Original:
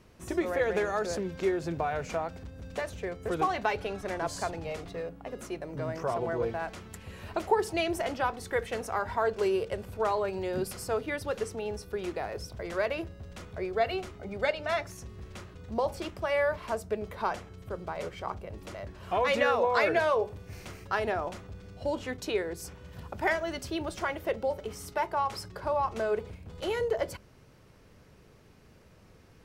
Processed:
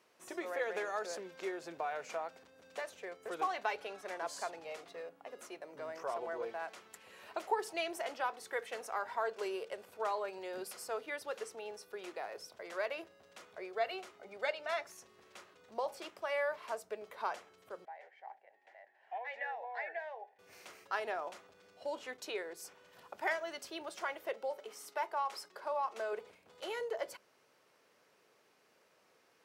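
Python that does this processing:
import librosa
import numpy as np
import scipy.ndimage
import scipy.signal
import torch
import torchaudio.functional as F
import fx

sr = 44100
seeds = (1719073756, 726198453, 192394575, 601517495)

y = fx.double_bandpass(x, sr, hz=1200.0, octaves=1.2, at=(17.85, 20.39))
y = fx.highpass(y, sr, hz=210.0, slope=12, at=(24.34, 26.13))
y = scipy.signal.sosfilt(scipy.signal.butter(2, 510.0, 'highpass', fs=sr, output='sos'), y)
y = y * librosa.db_to_amplitude(-6.0)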